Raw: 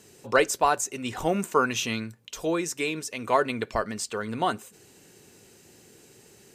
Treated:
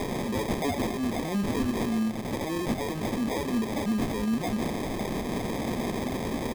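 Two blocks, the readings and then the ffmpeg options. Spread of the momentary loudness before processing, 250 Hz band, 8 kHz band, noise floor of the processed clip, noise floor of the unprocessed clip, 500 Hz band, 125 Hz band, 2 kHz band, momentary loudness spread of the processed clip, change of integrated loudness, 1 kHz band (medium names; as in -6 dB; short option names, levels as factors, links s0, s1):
9 LU, +6.0 dB, -8.0 dB, -33 dBFS, -55 dBFS, -3.5 dB, +6.0 dB, -6.5 dB, 3 LU, -2.5 dB, -6.5 dB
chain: -af "aeval=exprs='val(0)+0.5*0.0376*sgn(val(0))':c=same,highshelf=f=5400:g=9.5,aecho=1:1:5.2:0.8,asoftclip=type=tanh:threshold=0.168,highpass=f=74:w=0.5412,highpass=f=74:w=1.3066,alimiter=limit=0.075:level=0:latency=1:release=61,acrusher=samples=31:mix=1:aa=0.000001,equalizer=f=230:t=o:w=0.59:g=8.5,volume=0.841"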